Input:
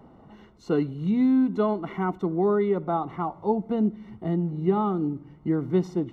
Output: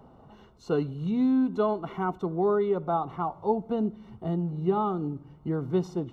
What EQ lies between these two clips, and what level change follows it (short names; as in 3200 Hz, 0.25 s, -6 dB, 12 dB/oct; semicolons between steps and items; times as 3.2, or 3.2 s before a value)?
thirty-one-band EQ 200 Hz -6 dB, 315 Hz -7 dB, 2000 Hz -10 dB; 0.0 dB